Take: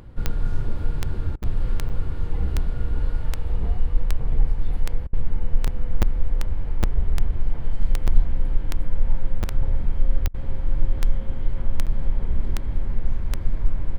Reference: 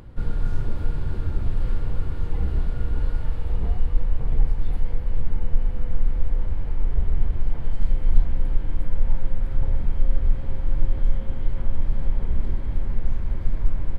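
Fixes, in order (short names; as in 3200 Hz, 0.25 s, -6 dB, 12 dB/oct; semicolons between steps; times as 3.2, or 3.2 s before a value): de-click; interpolate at 1.43/1.89/5.67/6.02/6.83/8.07/9.43/11.86, 7.4 ms; interpolate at 1.36/5.07/10.28, 60 ms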